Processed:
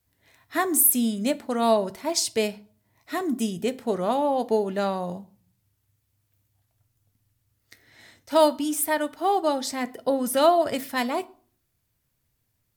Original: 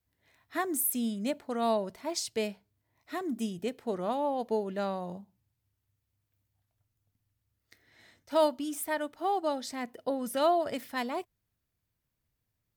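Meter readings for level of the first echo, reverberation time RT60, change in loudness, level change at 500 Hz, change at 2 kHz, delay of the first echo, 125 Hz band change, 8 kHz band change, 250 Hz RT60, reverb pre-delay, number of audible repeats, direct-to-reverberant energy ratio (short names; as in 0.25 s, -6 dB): none, 0.45 s, +8.0 dB, +7.0 dB, +7.5 dB, none, +6.5 dB, +11.0 dB, 0.60 s, 7 ms, none, 12.0 dB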